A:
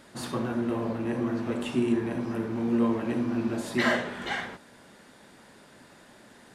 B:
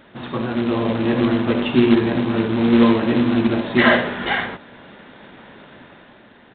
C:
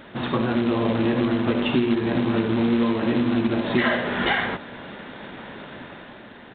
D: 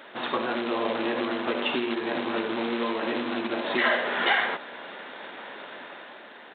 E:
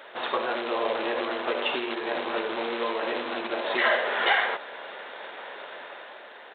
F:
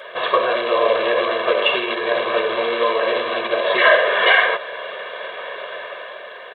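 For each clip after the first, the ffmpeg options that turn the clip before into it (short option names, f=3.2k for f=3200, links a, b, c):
-af "dynaudnorm=f=110:g=13:m=6dB,aresample=8000,acrusher=bits=3:mode=log:mix=0:aa=0.000001,aresample=44100,volume=5dB"
-af "acompressor=threshold=-23dB:ratio=6,volume=4.5dB"
-af "highpass=460"
-af "lowshelf=f=350:t=q:w=1.5:g=-8"
-af "aecho=1:1:1.8:0.96,volume=6.5dB"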